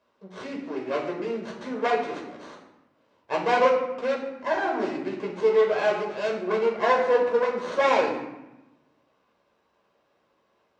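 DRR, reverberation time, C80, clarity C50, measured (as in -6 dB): -1.5 dB, 0.95 s, 8.0 dB, 5.0 dB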